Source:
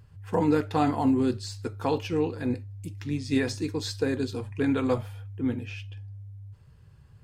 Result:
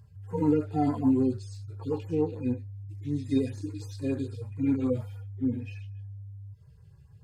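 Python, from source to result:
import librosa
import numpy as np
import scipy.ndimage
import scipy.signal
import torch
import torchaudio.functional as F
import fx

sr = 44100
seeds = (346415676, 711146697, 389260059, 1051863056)

y = fx.hpss_only(x, sr, part='harmonic')
y = fx.filter_lfo_notch(y, sr, shape='sine', hz=6.8, low_hz=950.0, high_hz=3500.0, q=0.85)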